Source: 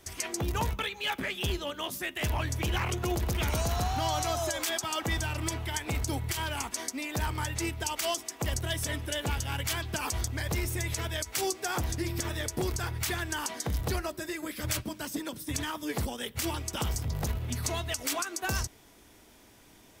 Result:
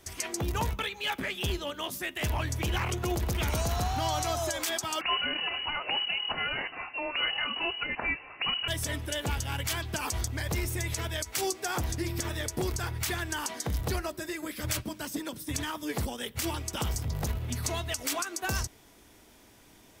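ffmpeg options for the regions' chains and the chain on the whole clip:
-filter_complex "[0:a]asettb=1/sr,asplit=3[s0][s1][s2];[s0]atrim=end=5.014[s3];[s1]atrim=start=5.01:end=8.68,asetpts=PTS-STARTPTS,afade=t=in:d=0.004:c=qsin,afade=t=out:st=3.666:d=0.004:c=qsin,highshelf=f=2300:g=11.5,lowpass=f=2600:t=q:w=0.5098,lowpass=f=2600:t=q:w=0.6013,lowpass=f=2600:t=q:w=0.9,lowpass=f=2600:t=q:w=2.563,afreqshift=-3000[s4];[s2]atrim=start=8.676[s5];[s3][s4]acrossfade=d=0.004:c1=hsin:c2=qsin[s6];[s6][s5]acrossfade=d=0.004:c1=qsin:c2=hsin"

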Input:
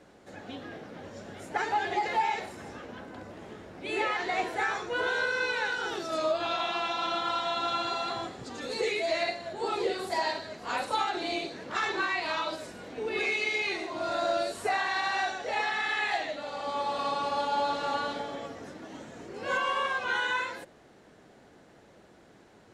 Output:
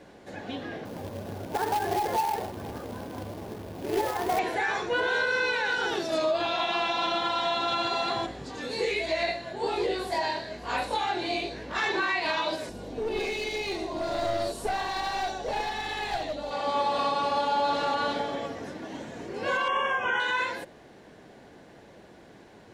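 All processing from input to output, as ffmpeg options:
-filter_complex "[0:a]asettb=1/sr,asplit=3[s0][s1][s2];[s0]atrim=end=0.854[s3];[s1]atrim=start=0.85:end=4.39,asetpts=PTS-STARTPTS,afade=t=in:d=0.004:c=qsin,afade=t=out:st=3.536:d=0.004:c=qsin,lowpass=f=1300:w=0.5412,lowpass=f=1300:w=1.3066,acrusher=bits=2:mode=log:mix=0:aa=0.000001,equalizer=f=92:t=o:w=0.72:g=7.5[s4];[s2]atrim=start=4.386[s5];[s3][s4]acrossfade=d=0.004:c1=hsin:c2=qsin[s6];[s6][s5]acrossfade=d=0.004:c1=qsin:c2=hsin,asettb=1/sr,asplit=3[s7][s8][s9];[s7]atrim=end=8.264[s10];[s8]atrim=start=8.26:end=11.79,asetpts=PTS-STARTPTS,afade=t=in:d=0.004:c=qsin,afade=t=out:st=3.526:d=0.004:c=qsin,aeval=exprs='val(0)+0.00282*(sin(2*PI*60*n/s)+sin(2*PI*2*60*n/s)/2+sin(2*PI*3*60*n/s)/3+sin(2*PI*4*60*n/s)/4+sin(2*PI*5*60*n/s)/5)':c=same,flanger=delay=18.5:depth=6.1:speed=1.2[s11];[s9]atrim=start=11.786[s12];[s10][s11]acrossfade=d=0.004:c1=hsin:c2=qsin[s13];[s13][s12]acrossfade=d=0.004:c1=qsin:c2=hsin,asettb=1/sr,asplit=3[s14][s15][s16];[s14]atrim=end=12.694[s17];[s15]atrim=start=12.69:end=16.51,asetpts=PTS-STARTPTS,afade=t=in:d=0.004:c=qsin,afade=t=out:st=3.816:d=0.004:c=qsin,equalizer=f=1900:w=0.97:g=-12,aeval=exprs='val(0)+0.00224*(sin(2*PI*50*n/s)+sin(2*PI*2*50*n/s)/2+sin(2*PI*3*50*n/s)/3+sin(2*PI*4*50*n/s)/4+sin(2*PI*5*50*n/s)/5)':c=same,aeval=exprs='clip(val(0),-1,0.0178)':c=same[s18];[s16]atrim=start=16.506[s19];[s17][s18]acrossfade=d=0.004:c1=hsin:c2=qsin[s20];[s20][s19]acrossfade=d=0.004:c1=qsin:c2=hsin,asettb=1/sr,asplit=3[s21][s22][s23];[s21]atrim=end=19.684[s24];[s22]atrim=start=19.68:end=20.2,asetpts=PTS-STARTPTS,afade=t=in:d=0.004:c=qsin,afade=t=out:st=0.516:d=0.004:c=qsin,asuperstop=centerf=4300:order=12:qfactor=2.1,highshelf=f=7100:g=-11,asplit=2[s25][s26];[s26]adelay=35,volume=0.299[s27];[s25][s27]amix=inputs=2:normalize=0,atrim=end_sample=22932[s28];[s23]atrim=start=20.196[s29];[s24][s28]acrossfade=d=0.004:c1=hsin:c2=qsin[s30];[s30][s29]acrossfade=d=0.004:c1=qsin:c2=hsin,equalizer=f=7500:t=o:w=0.7:g=-4,bandreject=f=1300:w=8.8,alimiter=limit=0.0668:level=0:latency=1:release=74,volume=1.88"

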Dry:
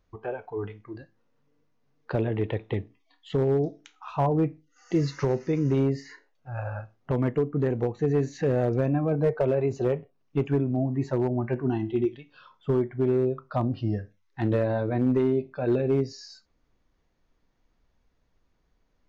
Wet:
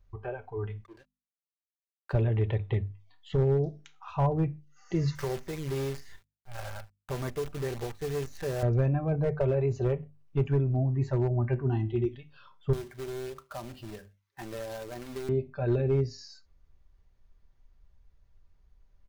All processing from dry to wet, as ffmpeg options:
-filter_complex "[0:a]asettb=1/sr,asplit=3[s0][s1][s2];[s0]atrim=end=0.844[s3];[s1]atrim=start=0.84:end=2.13,asetpts=PTS-STARTPTS,afade=t=in:d=0.004:c=qsin,afade=t=out:st=1.286:d=0.004:c=qsin,highpass=380,aeval=exprs='sgn(val(0))*max(abs(val(0))-0.00188,0)':c=same[s4];[s2]atrim=start=2.126[s5];[s3][s4]acrossfade=d=0.004:c1=hsin:c2=qsin[s6];[s6][s5]acrossfade=d=0.004:c1=qsin:c2=hsin,asettb=1/sr,asplit=3[s7][s8][s9];[s7]atrim=end=5.154[s10];[s8]atrim=start=5.15:end=8.63,asetpts=PTS-STARTPTS,afade=t=in:d=0.004:c=qsin,afade=t=out:st=3.476:d=0.004:c=qsin,highpass=f=450:p=1,acrusher=bits=7:dc=4:mix=0:aa=0.000001[s11];[s9]atrim=start=8.626[s12];[s10][s11]acrossfade=d=0.004:c1=hsin:c2=qsin[s13];[s13][s12]acrossfade=d=0.004:c1=qsin:c2=hsin,asettb=1/sr,asplit=3[s14][s15][s16];[s14]atrim=end=12.734[s17];[s15]atrim=start=12.73:end=15.29,asetpts=PTS-STARTPTS,afade=t=in:d=0.004:c=qsin,afade=t=out:st=2.556:d=0.004:c=qsin,highpass=310,acompressor=threshold=0.0178:ratio=2.5:attack=3.2:release=140:knee=1:detection=peak,acrusher=bits=2:mode=log:mix=0:aa=0.000001[s18];[s16]atrim=start=15.286[s19];[s17][s18]acrossfade=d=0.004:c1=hsin:c2=qsin[s20];[s20][s19]acrossfade=d=0.004:c1=qsin:c2=hsin,lowshelf=f=140:t=q:w=1.5:g=13,bandreject=f=50:t=h:w=6,bandreject=f=100:t=h:w=6,bandreject=f=150:t=h:w=6,bandreject=f=200:t=h:w=6,bandreject=f=250:t=h:w=6,aecho=1:1:5.1:0.37,volume=0.631"

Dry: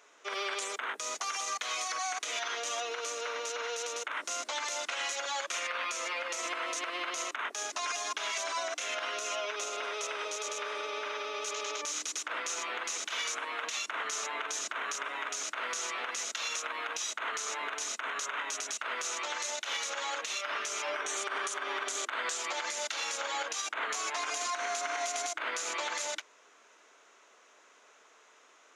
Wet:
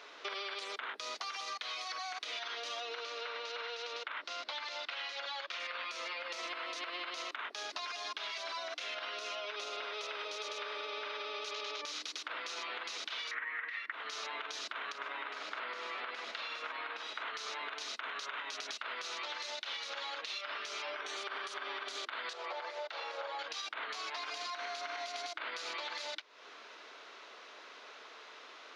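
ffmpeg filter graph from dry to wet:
-filter_complex "[0:a]asettb=1/sr,asplit=3[s0][s1][s2];[s0]atrim=end=3.034[s3];[s1]atrim=start=3.03:end=5.6,asetpts=PTS-STARTPTS,afade=t=in:d=0.004:c=qsin,afade=t=out:st=2.566:d=0.004:c=qsin,lowpass=4600,lowshelf=f=380:g=-6.5[s4];[s2]atrim=start=5.596[s5];[s3][s4]acrossfade=d=0.004:c1=hsin:c2=qsin[s6];[s6][s5]acrossfade=d=0.004:c1=qsin:c2=hsin,asettb=1/sr,asplit=3[s7][s8][s9];[s7]atrim=end=13.314[s10];[s8]atrim=start=13.31:end=13.92,asetpts=PTS-STARTPTS,afade=t=in:d=0.004:c=qsin,afade=t=out:st=0.606:d=0.004:c=qsin,lowpass=f=1900:t=q:w=11,equalizer=f=700:t=o:w=0.64:g=-6[s11];[s9]atrim=start=13.916[s12];[s10][s11]acrossfade=d=0.004:c1=hsin:c2=qsin[s13];[s13][s12]acrossfade=d=0.004:c1=qsin:c2=hsin,asettb=1/sr,asplit=3[s14][s15][s16];[s14]atrim=end=14.924[s17];[s15]atrim=start=14.92:end=17.23,asetpts=PTS-STARTPTS,afade=t=in:d=0.004:c=qsin,afade=t=out:st=2.306:d=0.004:c=qsin,acrossover=split=2600[s18][s19];[s19]acompressor=threshold=0.00398:ratio=4:attack=1:release=60[s20];[s18][s20]amix=inputs=2:normalize=0,equalizer=f=6000:w=6.9:g=-5,aecho=1:1:99:0.473,atrim=end_sample=101871[s21];[s16]atrim=start=17.226[s22];[s17][s21]acrossfade=d=0.004:c1=hsin:c2=qsin[s23];[s23][s22]acrossfade=d=0.004:c1=qsin:c2=hsin,asettb=1/sr,asplit=3[s24][s25][s26];[s24]atrim=end=22.334[s27];[s25]atrim=start=22.33:end=23.39,asetpts=PTS-STARTPTS,afade=t=in:d=0.004:c=qsin,afade=t=out:st=1.056:d=0.004:c=qsin,highpass=f=450:w=0.5412,highpass=f=450:w=1.3066,tiltshelf=f=1100:g=9,acrossover=split=3400[s28][s29];[s29]acompressor=threshold=0.00282:ratio=4:attack=1:release=60[s30];[s28][s30]amix=inputs=2:normalize=0[s31];[s26]atrim=start=23.386[s32];[s27][s31]acrossfade=d=0.004:c1=hsin:c2=qsin[s33];[s33][s32]acrossfade=d=0.004:c1=qsin:c2=hsin,highpass=150,highshelf=f=5700:t=q:w=3:g=-9,acompressor=threshold=0.00447:ratio=6,volume=2.37"

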